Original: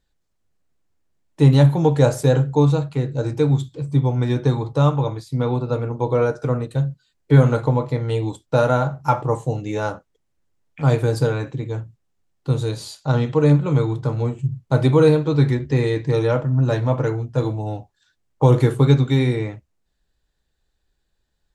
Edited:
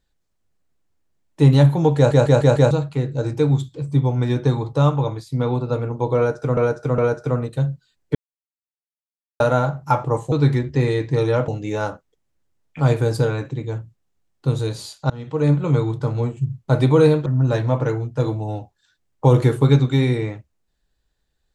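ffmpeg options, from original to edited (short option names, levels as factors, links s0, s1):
-filter_complex "[0:a]asplit=14[s0][s1][s2][s3][s4][s5][s6][s7][s8][s9][s10][s11][s12][s13];[s0]atrim=end=2.112[s14];[s1]atrim=start=1.958:end=2.112[s15];[s2]atrim=start=1.958:end=2.112[s16];[s3]atrim=start=1.958:end=2.112[s17];[s4]atrim=start=1.958:end=2.112[s18];[s5]atrim=start=2.708:end=6.572[s19];[s6]atrim=start=6.158:end=6.572[s20];[s7]atrim=start=6.158:end=7.33,asetpts=PTS-STARTPTS,afade=t=out:st=1.168:d=0.004:c=hsin[s21];[s8]atrim=start=7.33:end=8.58,asetpts=PTS-STARTPTS,volume=0[s22];[s9]atrim=start=8.58:end=9.502,asetpts=PTS-STARTPTS,afade=t=in:d=0.004:c=hsin[s23];[s10]atrim=start=15.278:end=16.442[s24];[s11]atrim=start=9.498:end=13.12,asetpts=PTS-STARTPTS,afade=t=out:st=3.618:d=0.004:c=hsin:silence=0.0630957[s25];[s12]atrim=start=13.12:end=15.282,asetpts=PTS-STARTPTS,afade=t=in:d=0.52:silence=0.0630957[s26];[s13]atrim=start=16.438[s27];[s14][s15]acrossfade=d=0.004:c1=hsin:c2=hsin[s28];[s28][s16]acrossfade=d=0.004:c1=hsin:c2=hsin[s29];[s29][s17]acrossfade=d=0.004:c1=hsin:c2=hsin[s30];[s30][s18]acrossfade=d=0.004:c1=hsin:c2=hsin[s31];[s31][s19]acrossfade=d=0.004:c1=hsin:c2=hsin[s32];[s32][s20]acrossfade=d=0.004:c1=hsin:c2=hsin[s33];[s21][s22][s23]concat=n=3:v=0:a=1[s34];[s33][s34]acrossfade=d=0.004:c1=hsin:c2=hsin[s35];[s35][s24]acrossfade=d=0.004:c1=hsin:c2=hsin[s36];[s25][s26]concat=n=2:v=0:a=1[s37];[s36][s37]acrossfade=d=0.004:c1=hsin:c2=hsin[s38];[s38][s27]acrossfade=d=0.004:c1=hsin:c2=hsin"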